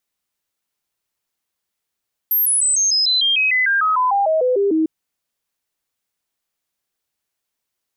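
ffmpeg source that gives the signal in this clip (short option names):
-f lavfi -i "aevalsrc='0.211*clip(min(mod(t,0.15),0.15-mod(t,0.15))/0.005,0,1)*sin(2*PI*12800*pow(2,-floor(t/0.15)/3)*mod(t,0.15))':d=2.55:s=44100"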